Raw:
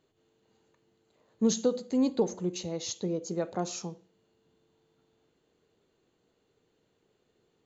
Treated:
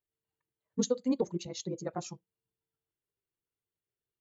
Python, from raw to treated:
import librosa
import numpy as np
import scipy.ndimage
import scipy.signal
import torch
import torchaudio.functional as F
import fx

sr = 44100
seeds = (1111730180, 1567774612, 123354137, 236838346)

y = fx.bin_expand(x, sr, power=1.5)
y = fx.stretch_grains(y, sr, factor=0.55, grain_ms=39.0)